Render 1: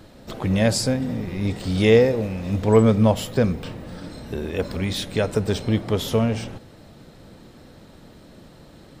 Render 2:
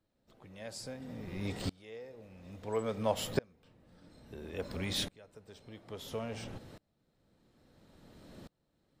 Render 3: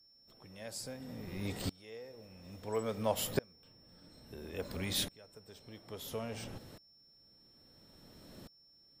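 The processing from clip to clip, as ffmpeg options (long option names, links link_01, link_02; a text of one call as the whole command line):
ffmpeg -i in.wav -filter_complex "[0:a]acrossover=split=380[link_01][link_02];[link_01]acompressor=threshold=-28dB:ratio=6[link_03];[link_03][link_02]amix=inputs=2:normalize=0,aeval=exprs='val(0)*pow(10,-31*if(lt(mod(-0.59*n/s,1),2*abs(-0.59)/1000),1-mod(-0.59*n/s,1)/(2*abs(-0.59)/1000),(mod(-0.59*n/s,1)-2*abs(-0.59)/1000)/(1-2*abs(-0.59)/1000))/20)':channel_layout=same,volume=-4dB" out.wav
ffmpeg -i in.wav -af "aeval=exprs='val(0)+0.000708*sin(2*PI*5400*n/s)':channel_layout=same,equalizer=frequency=14000:width_type=o:width=1:gain=11,volume=-1.5dB" out.wav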